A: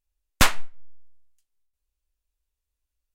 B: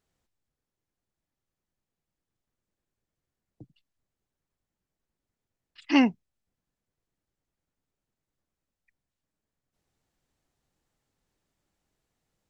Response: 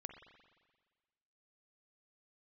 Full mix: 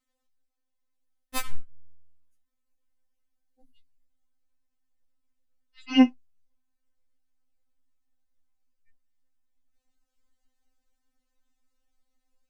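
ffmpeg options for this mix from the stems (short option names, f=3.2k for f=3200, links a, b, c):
-filter_complex "[0:a]equalizer=f=11k:w=1.8:g=8.5,aeval=exprs='0.631*(cos(1*acos(clip(val(0)/0.631,-1,1)))-cos(1*PI/2))+0.0891*(cos(8*acos(clip(val(0)/0.631,-1,1)))-cos(8*PI/2))':c=same,adelay=950,volume=-2dB[a];[1:a]asubboost=boost=5:cutoff=130,volume=0dB,asplit=2[b][c];[c]apad=whole_len=180373[d];[a][d]sidechaingate=range=-10dB:threshold=-57dB:ratio=16:detection=peak[e];[e][b]amix=inputs=2:normalize=0,afftfilt=real='re*3.46*eq(mod(b,12),0)':imag='im*3.46*eq(mod(b,12),0)':win_size=2048:overlap=0.75"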